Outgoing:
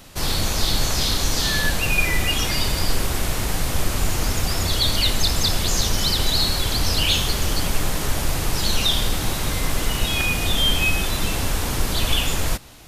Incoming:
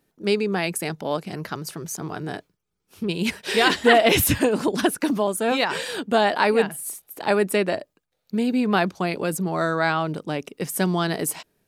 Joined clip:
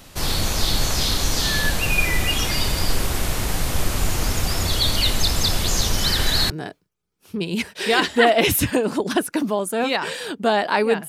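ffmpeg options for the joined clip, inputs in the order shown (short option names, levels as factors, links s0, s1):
-filter_complex "[0:a]asettb=1/sr,asplit=3[s0][s1][s2];[s0]atrim=end=6.044[s3];[s1]atrim=start=6.04:end=6.5,asetpts=PTS-STARTPTS,afade=t=in:d=0.004:c=qsin,afade=t=out:st=0.456:d=0.004:c=qsin,equalizer=f=1700:t=o:w=0.41:g=9.5[s4];[s2]atrim=start=6.496[s5];[s3][s4]acrossfade=d=0.004:c1=hsin:c2=qsin[s6];[s6][s5]acrossfade=d=0.004:c1=qsin:c2=hsin,apad=whole_dur=11.08,atrim=end=11.08,atrim=end=6.502[s7];[1:a]atrim=start=2.178:end=6.76[s8];[s7][s8]acrossfade=d=0.004:c1=hsin:c2=hsin"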